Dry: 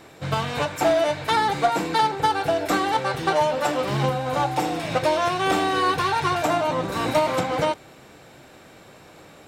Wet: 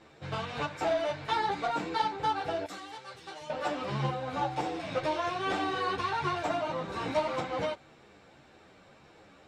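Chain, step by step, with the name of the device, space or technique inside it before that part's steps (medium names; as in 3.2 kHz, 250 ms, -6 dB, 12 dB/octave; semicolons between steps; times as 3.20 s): string-machine ensemble chorus (three-phase chorus; low-pass 5.7 kHz 12 dB/octave); 2.66–3.50 s: pre-emphasis filter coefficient 0.8; trim -6 dB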